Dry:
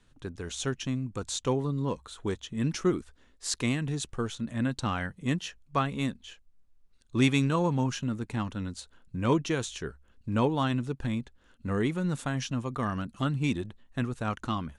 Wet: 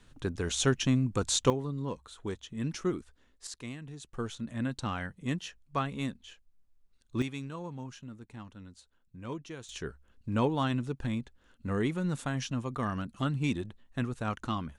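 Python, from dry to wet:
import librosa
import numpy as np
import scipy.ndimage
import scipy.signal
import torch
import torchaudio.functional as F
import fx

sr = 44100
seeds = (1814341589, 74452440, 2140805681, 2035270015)

y = fx.gain(x, sr, db=fx.steps((0.0, 5.0), (1.5, -5.0), (3.47, -13.0), (4.14, -4.0), (7.22, -14.0), (9.69, -2.0)))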